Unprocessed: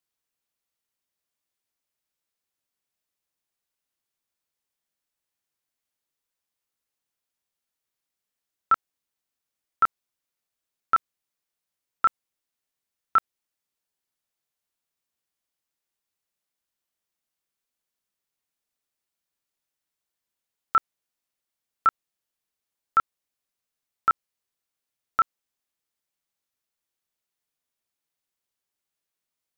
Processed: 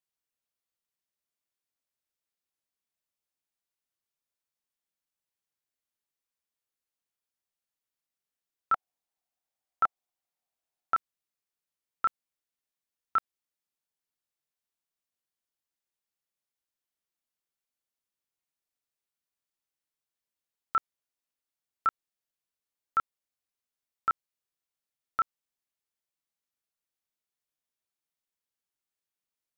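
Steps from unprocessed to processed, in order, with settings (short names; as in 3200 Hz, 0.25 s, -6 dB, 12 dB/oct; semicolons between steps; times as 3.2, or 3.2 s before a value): 8.73–10.94 bell 740 Hz +12.5 dB 0.53 oct; gain -6.5 dB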